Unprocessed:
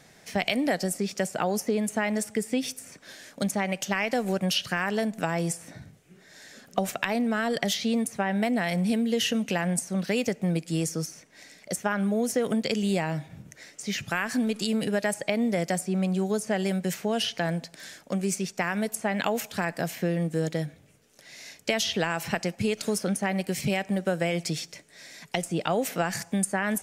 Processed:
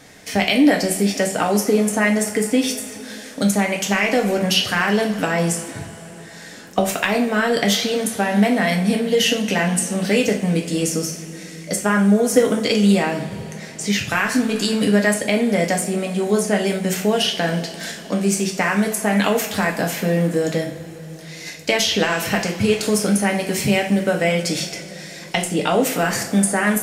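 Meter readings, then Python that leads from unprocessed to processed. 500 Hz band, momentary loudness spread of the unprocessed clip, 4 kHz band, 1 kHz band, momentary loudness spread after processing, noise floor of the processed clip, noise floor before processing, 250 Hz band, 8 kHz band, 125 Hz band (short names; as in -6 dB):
+9.0 dB, 9 LU, +9.5 dB, +8.0 dB, 13 LU, -37 dBFS, -56 dBFS, +8.5 dB, +9.5 dB, +7.5 dB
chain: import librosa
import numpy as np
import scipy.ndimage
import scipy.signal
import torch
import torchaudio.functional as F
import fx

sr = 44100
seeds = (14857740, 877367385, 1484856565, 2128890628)

p1 = fx.level_steps(x, sr, step_db=22)
p2 = x + F.gain(torch.from_numpy(p1), 0.0).numpy()
p3 = fx.rev_double_slope(p2, sr, seeds[0], early_s=0.38, late_s=4.4, knee_db=-20, drr_db=0.0)
y = F.gain(torch.from_numpy(p3), 5.0).numpy()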